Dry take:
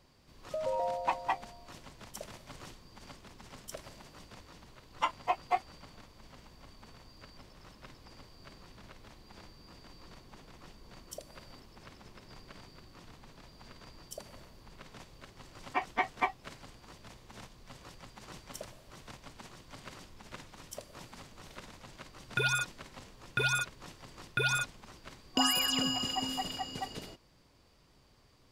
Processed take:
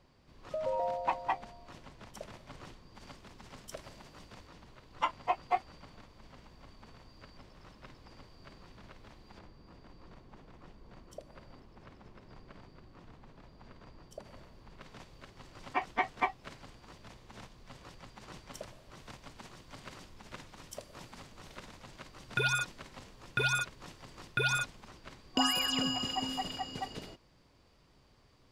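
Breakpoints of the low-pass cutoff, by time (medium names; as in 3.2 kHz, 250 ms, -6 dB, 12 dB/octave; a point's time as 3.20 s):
low-pass 6 dB/octave
3 kHz
from 2.95 s 6.3 kHz
from 4.47 s 3.7 kHz
from 9.39 s 1.4 kHz
from 14.25 s 2.7 kHz
from 14.81 s 5.3 kHz
from 19.00 s 9 kHz
from 24.88 s 5.3 kHz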